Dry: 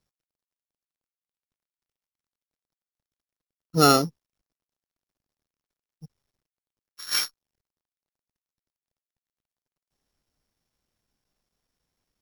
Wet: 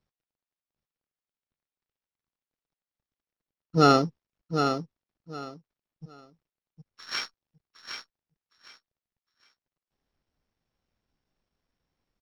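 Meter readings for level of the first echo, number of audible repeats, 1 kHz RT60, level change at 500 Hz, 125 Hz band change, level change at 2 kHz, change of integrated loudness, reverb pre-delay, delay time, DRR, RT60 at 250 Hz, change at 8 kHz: -7.0 dB, 3, no reverb, +0.5 dB, +0.5 dB, -0.5 dB, -3.0 dB, no reverb, 761 ms, no reverb, no reverb, -13.0 dB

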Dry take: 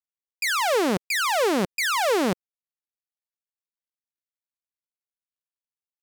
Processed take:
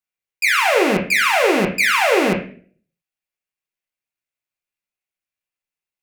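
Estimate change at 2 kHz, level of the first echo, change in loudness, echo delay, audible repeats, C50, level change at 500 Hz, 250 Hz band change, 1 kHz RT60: +10.0 dB, no echo, +7.0 dB, no echo, no echo, 5.5 dB, +6.0 dB, +5.5 dB, 0.40 s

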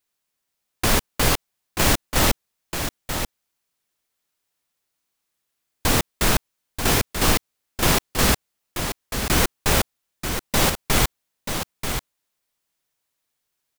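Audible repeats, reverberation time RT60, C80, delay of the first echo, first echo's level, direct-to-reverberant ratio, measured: 1, no reverb, no reverb, 935 ms, -7.5 dB, no reverb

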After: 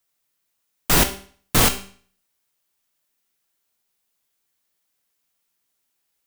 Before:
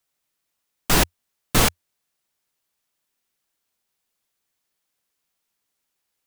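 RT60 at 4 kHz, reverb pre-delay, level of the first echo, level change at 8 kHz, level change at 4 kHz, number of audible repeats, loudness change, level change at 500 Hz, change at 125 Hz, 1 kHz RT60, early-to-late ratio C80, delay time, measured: 0.45 s, 17 ms, no echo, +2.5 dB, +1.5 dB, no echo, +2.0 dB, +0.5 dB, +0.5 dB, 0.50 s, 15.5 dB, no echo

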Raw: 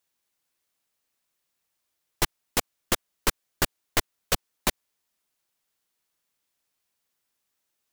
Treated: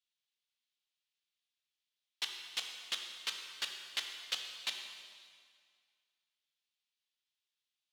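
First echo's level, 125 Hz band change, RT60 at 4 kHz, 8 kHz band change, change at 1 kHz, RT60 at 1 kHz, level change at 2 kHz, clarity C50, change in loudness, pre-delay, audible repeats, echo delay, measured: no echo, under -35 dB, 1.8 s, -15.0 dB, -19.0 dB, 2.0 s, -10.5 dB, 4.5 dB, -10.5 dB, 5 ms, no echo, no echo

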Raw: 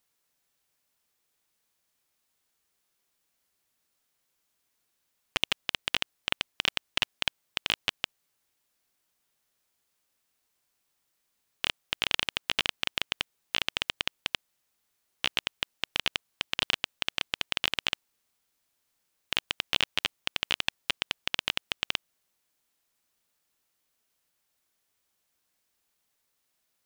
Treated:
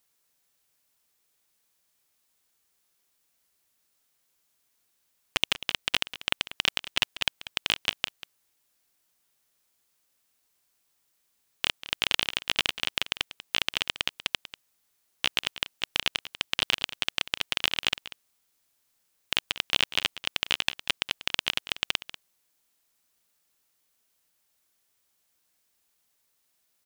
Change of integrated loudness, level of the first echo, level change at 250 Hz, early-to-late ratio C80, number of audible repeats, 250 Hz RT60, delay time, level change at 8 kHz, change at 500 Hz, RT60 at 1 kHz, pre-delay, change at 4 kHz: +2.5 dB, -15.0 dB, +1.0 dB, no reverb, 1, no reverb, 191 ms, +4.0 dB, +1.0 dB, no reverb, no reverb, +2.5 dB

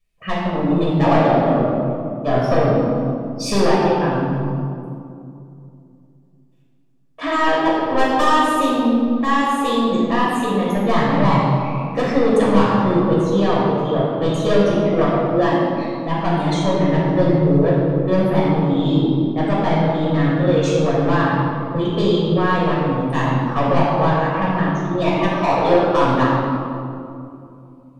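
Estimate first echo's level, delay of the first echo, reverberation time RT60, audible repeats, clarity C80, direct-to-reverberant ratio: no echo, no echo, 2.6 s, no echo, 0.0 dB, -7.0 dB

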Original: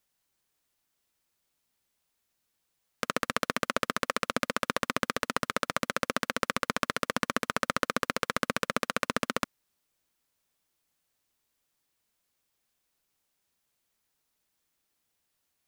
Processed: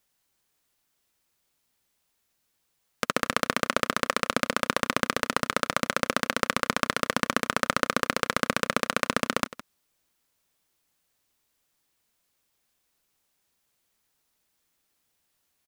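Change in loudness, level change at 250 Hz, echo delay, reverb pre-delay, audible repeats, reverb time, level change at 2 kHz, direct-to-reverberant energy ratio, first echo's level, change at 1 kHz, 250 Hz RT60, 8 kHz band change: +4.0 dB, +4.0 dB, 163 ms, no reverb, 1, no reverb, +4.0 dB, no reverb, -16.0 dB, +4.0 dB, no reverb, +4.0 dB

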